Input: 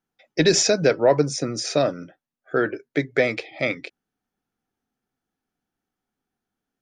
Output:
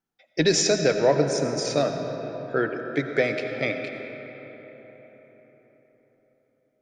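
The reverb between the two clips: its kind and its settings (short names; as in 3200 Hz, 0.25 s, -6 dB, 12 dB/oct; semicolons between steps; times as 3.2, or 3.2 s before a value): digital reverb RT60 4.7 s, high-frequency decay 0.5×, pre-delay 45 ms, DRR 5.5 dB; gain -3 dB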